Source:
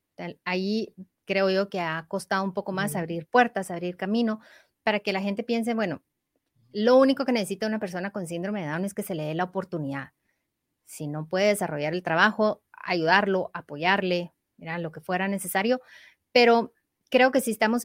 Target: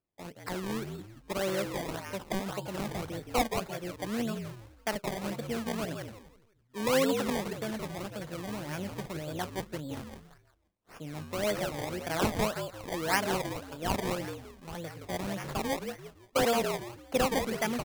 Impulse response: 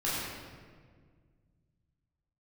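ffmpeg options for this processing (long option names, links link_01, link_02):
-filter_complex "[0:a]asettb=1/sr,asplit=3[link_01][link_02][link_03];[link_01]atrim=end=15.464[link_04];[link_02]atrim=start=15.46:end=16.45,asetpts=PTS-STARTPTS,afade=type=in:duration=0.004:curve=qsin,afade=type=out:start_time=0.986:duration=0.004:curve=qsin,afreqshift=24[link_05];[link_03]atrim=start=16.446[link_06];[link_04][link_05]acrossfade=duration=0.004:curve1=hsin:curve2=qsin[link_07];[link_07][link_06]acrossfade=duration=0.004:curve1=qsin:curve2=hsin,asplit=5[link_08][link_09][link_10][link_11][link_12];[link_09]adelay=170,afreqshift=-55,volume=-6dB[link_13];[link_10]adelay=340,afreqshift=-110,volume=-15.6dB[link_14];[link_11]adelay=510,afreqshift=-165,volume=-25.3dB[link_15];[link_12]adelay=680,afreqshift=-220,volume=-34.9dB[link_16];[link_08][link_13][link_14][link_15][link_16]amix=inputs=5:normalize=0,acrusher=samples=22:mix=1:aa=0.000001:lfo=1:lforange=22:lforate=1.8,volume=-8.5dB"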